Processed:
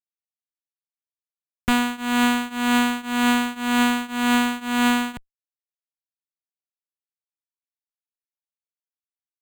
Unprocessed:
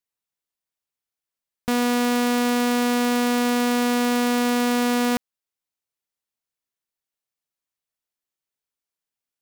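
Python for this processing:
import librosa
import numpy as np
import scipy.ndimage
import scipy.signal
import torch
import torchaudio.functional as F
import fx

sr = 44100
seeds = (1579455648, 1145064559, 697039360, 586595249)

y = fx.tone_stack(x, sr, knobs='10-0-10')
y = fx.fuzz(y, sr, gain_db=44.0, gate_db=-50.0)
y = fx.tremolo_shape(y, sr, shape='triangle', hz=1.9, depth_pct=95)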